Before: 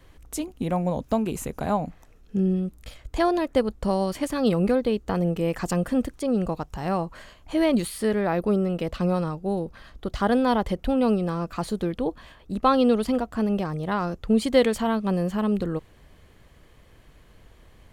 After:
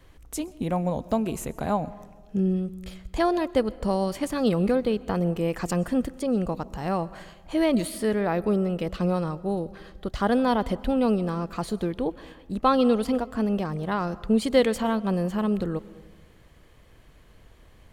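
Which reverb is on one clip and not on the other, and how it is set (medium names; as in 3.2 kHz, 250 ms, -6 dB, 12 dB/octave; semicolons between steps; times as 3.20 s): algorithmic reverb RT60 1.3 s, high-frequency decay 0.4×, pre-delay 85 ms, DRR 19 dB; trim -1 dB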